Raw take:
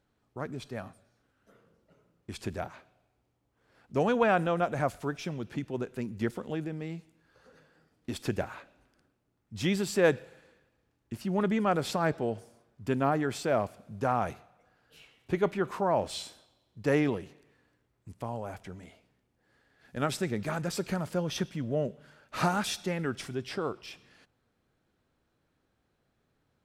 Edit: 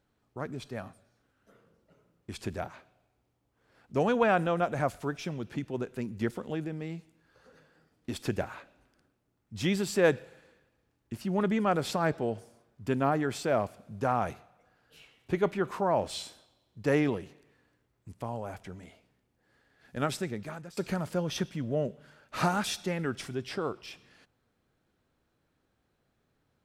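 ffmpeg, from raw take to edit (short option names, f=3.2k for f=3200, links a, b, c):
-filter_complex "[0:a]asplit=2[a][b];[a]atrim=end=20.77,asetpts=PTS-STARTPTS,afade=t=out:st=20.03:d=0.74:silence=0.105925[c];[b]atrim=start=20.77,asetpts=PTS-STARTPTS,afade=t=in:d=0.004:c=hsin:silence=0.105925[d];[c][d]concat=n=2:v=0:a=1"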